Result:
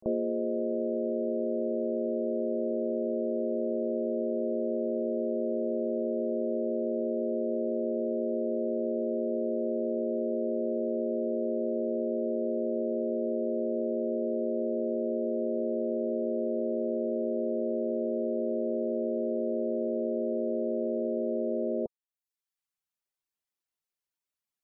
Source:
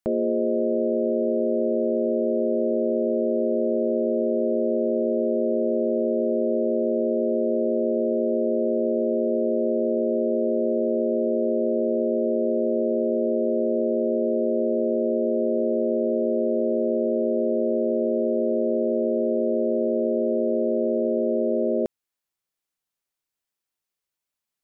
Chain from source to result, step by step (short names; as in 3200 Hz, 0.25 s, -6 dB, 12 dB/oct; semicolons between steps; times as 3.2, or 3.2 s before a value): reverb removal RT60 0.77 s; spectral gate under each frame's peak -25 dB strong; pre-echo 35 ms -23 dB; gain -4.5 dB